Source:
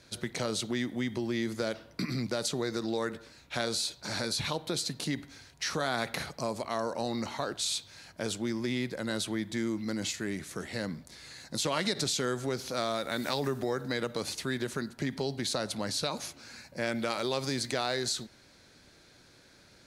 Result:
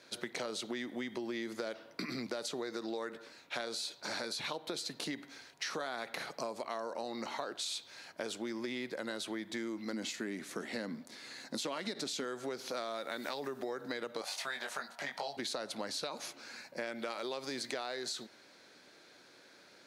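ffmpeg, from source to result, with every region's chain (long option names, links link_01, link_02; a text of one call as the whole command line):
ffmpeg -i in.wav -filter_complex "[0:a]asettb=1/sr,asplit=3[link_01][link_02][link_03];[link_01]atrim=end=9.934[link_04];[link_02]atrim=start=9.93:end=12.24,asetpts=PTS-STARTPTS,afade=type=in:duration=0.004:curve=qsin,afade=type=out:start_time=2.306:duration=0.004:curve=qsin,asoftclip=type=hard:threshold=-18dB,equalizer=frequency=240:width_type=o:width=0.6:gain=8.5[link_05];[link_03]atrim=start=12.236[link_06];[link_04][link_05]acrossfade=duration=0.004:curve1=hsin:curve2=qsin[link_07];[link_07][link_06]acrossfade=duration=0.004:curve1=qsin:curve2=hsin,asettb=1/sr,asplit=3[link_08][link_09][link_10];[link_08]atrim=end=14.214[link_11];[link_09]atrim=start=14.21:end=15.37,asetpts=PTS-STARTPTS,afade=type=in:duration=0.004:curve=qsin,afade=type=out:start_time=1.156:duration=0.004:curve=qsin,lowshelf=frequency=500:width_type=q:width=3:gain=-11,asplit=2[link_12][link_13];[link_13]adelay=21,volume=-3.5dB[link_14];[link_12][link_14]amix=inputs=2:normalize=0,atrim=end_sample=51156[link_15];[link_10]atrim=start=15.366[link_16];[link_11][link_15]acrossfade=duration=0.004:curve1=hsin:curve2=qsin[link_17];[link_17][link_16]acrossfade=duration=0.004:curve1=qsin:curve2=hsin,highpass=310,equalizer=frequency=9700:width=0.5:gain=-6,acompressor=threshold=-37dB:ratio=6,volume=1.5dB" out.wav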